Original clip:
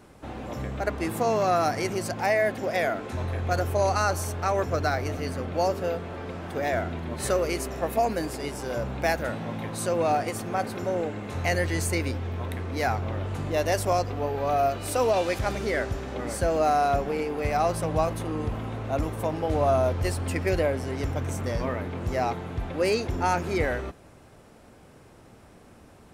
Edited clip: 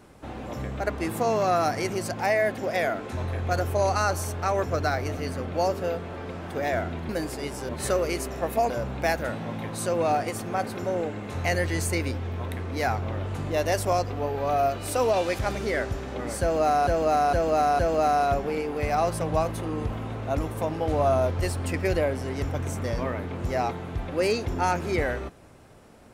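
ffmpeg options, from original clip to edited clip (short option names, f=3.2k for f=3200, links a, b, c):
-filter_complex "[0:a]asplit=7[a][b][c][d][e][f][g];[a]atrim=end=7.092[h];[b]atrim=start=8.098:end=8.702[i];[c]atrim=start=7.088:end=8.102[j];[d]atrim=start=8.698:end=16.872[k];[e]atrim=start=16.408:end=16.872[l];[f]atrim=start=16.408:end=16.872[m];[g]atrim=start=16.408[n];[h][i]acrossfade=d=0.004:c1=hsin:c2=hsin[o];[o][j]acrossfade=d=0.004:c1=hsin:c2=hsin[p];[p][k]acrossfade=d=0.004:c1=hsin:c2=hsin[q];[q][l]acrossfade=d=0.004:c1=hsin:c2=hsin[r];[r][m]acrossfade=d=0.004:c1=hsin:c2=hsin[s];[s][n]acrossfade=d=0.004:c1=hsin:c2=hsin"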